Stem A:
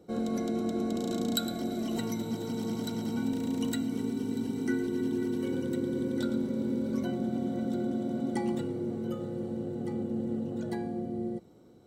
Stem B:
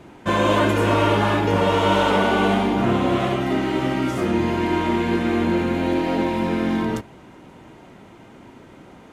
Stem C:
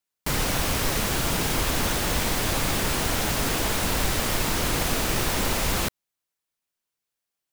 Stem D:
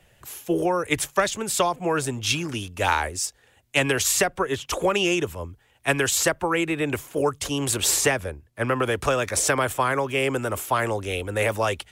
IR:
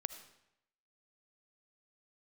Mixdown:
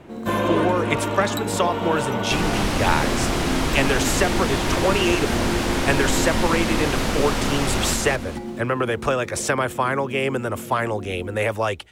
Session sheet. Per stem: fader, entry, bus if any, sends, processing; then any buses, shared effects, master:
−1.5 dB, 0.00 s, no send, no echo send, high-shelf EQ 8,800 Hz +11.5 dB; noise that follows the level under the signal 29 dB
−0.5 dB, 0.00 s, no send, no echo send, automatic ducking −7 dB, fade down 1.10 s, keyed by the fourth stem
+1.0 dB, 2.05 s, no send, echo send −3.5 dB, low-pass filter 11,000 Hz 12 dB per octave
+1.0 dB, 0.00 s, no send, no echo send, no processing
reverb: not used
echo: repeating echo 224 ms, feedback 35%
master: high-shelf EQ 5,600 Hz −8.5 dB

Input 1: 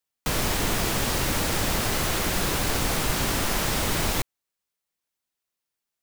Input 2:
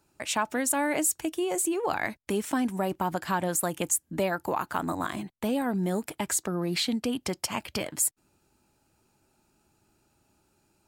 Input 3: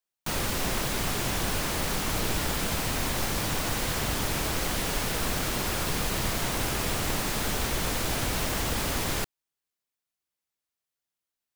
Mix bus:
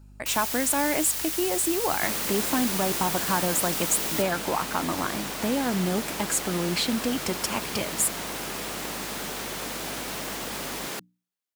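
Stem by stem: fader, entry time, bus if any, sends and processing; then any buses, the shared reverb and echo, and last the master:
−14.0 dB, 0.00 s, no send, spectral tilt +4 dB per octave
+1.5 dB, 0.00 s, no send, mains hum 50 Hz, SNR 20 dB
−3.0 dB, 1.75 s, no send, high-pass filter 170 Hz 24 dB per octave; mains-hum notches 60/120/180/240/300 Hz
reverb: not used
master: no processing

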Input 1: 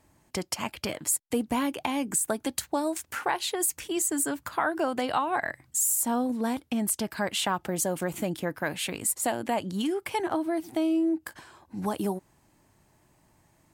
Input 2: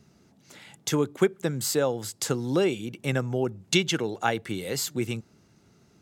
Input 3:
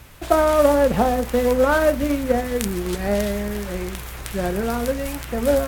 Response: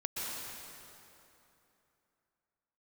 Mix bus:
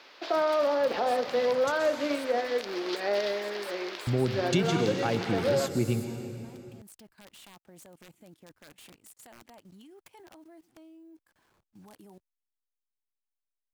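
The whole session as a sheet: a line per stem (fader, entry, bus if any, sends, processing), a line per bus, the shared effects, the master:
−15.5 dB, 0.00 s, no bus, no send, hold until the input has moved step −46.5 dBFS; output level in coarse steps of 18 dB; wrap-around overflow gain 28 dB
−7.5 dB, 0.80 s, muted 0:01.72–0:04.07, bus A, send −8.5 dB, low-shelf EQ 440 Hz +11 dB
−4.0 dB, 0.00 s, bus A, send −22 dB, high-pass filter 340 Hz 24 dB per octave; high shelf with overshoot 6,500 Hz −12 dB, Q 3
bus A: 0.0 dB, high-shelf EQ 10,000 Hz −12 dB; brickwall limiter −19.5 dBFS, peak gain reduction 11.5 dB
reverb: on, RT60 3.0 s, pre-delay 113 ms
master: no processing

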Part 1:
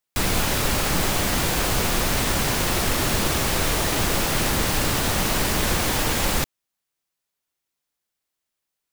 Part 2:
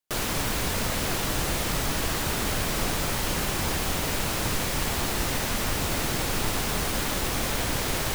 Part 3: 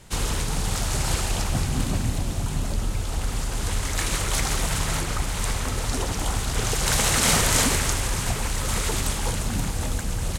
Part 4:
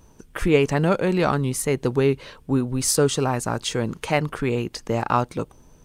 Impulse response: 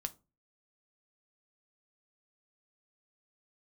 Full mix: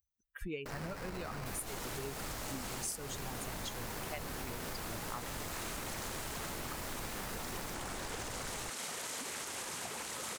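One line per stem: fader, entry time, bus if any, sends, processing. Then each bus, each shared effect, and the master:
−18.5 dB, 1.30 s, no send, parametric band 13,000 Hz +7 dB 0.71 octaves
−5.5 dB, 0.55 s, no send, brickwall limiter −22.5 dBFS, peak gain reduction 8.5 dB; sample-rate reduction 3,400 Hz, jitter 20%
−9.0 dB, 1.55 s, no send, high-pass filter 290 Hz 12 dB per octave; brickwall limiter −18 dBFS, peak gain reduction 11 dB
+1.0 dB, 0.00 s, no send, spectral dynamics exaggerated over time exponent 2; first-order pre-emphasis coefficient 0.8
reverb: not used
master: downward compressor 6 to 1, threshold −38 dBFS, peak gain reduction 17.5 dB

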